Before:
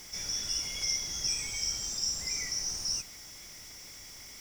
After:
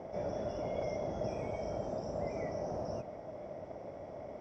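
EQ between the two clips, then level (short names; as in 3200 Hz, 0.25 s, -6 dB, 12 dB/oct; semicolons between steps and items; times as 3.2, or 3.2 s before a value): HPF 100 Hz 12 dB/oct; synth low-pass 620 Hz, resonance Q 6.6; +9.5 dB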